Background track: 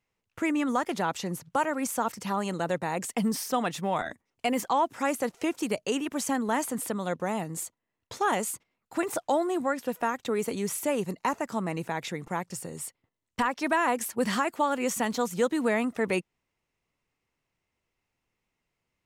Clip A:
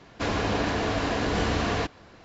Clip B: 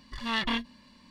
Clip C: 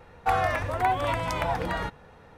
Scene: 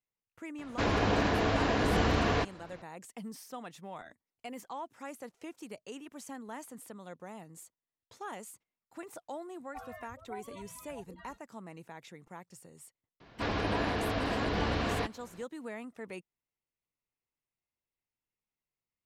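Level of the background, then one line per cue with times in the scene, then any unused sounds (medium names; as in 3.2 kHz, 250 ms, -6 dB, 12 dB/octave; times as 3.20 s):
background track -16 dB
0.58 s: add A -1.5 dB + treble shelf 6.1 kHz -8 dB
9.48 s: add C -17.5 dB + expander on every frequency bin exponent 3
13.20 s: add A -5.5 dB + low-pass 5.2 kHz 24 dB/octave
not used: B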